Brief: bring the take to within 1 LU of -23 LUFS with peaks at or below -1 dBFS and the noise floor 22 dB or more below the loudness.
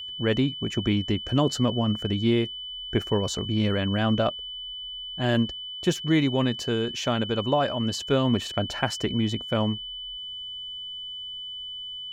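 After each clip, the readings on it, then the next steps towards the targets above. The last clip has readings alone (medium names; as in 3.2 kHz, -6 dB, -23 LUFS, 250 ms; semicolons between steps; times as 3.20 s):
steady tone 3 kHz; tone level -34 dBFS; loudness -26.5 LUFS; peak level -9.5 dBFS; loudness target -23.0 LUFS
-> band-stop 3 kHz, Q 30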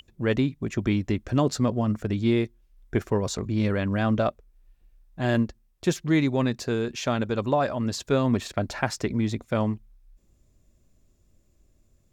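steady tone not found; loudness -26.5 LUFS; peak level -9.0 dBFS; loudness target -23.0 LUFS
-> trim +3.5 dB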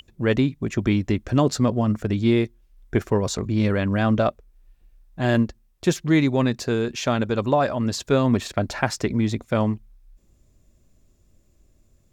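loudness -23.0 LUFS; peak level -5.5 dBFS; noise floor -61 dBFS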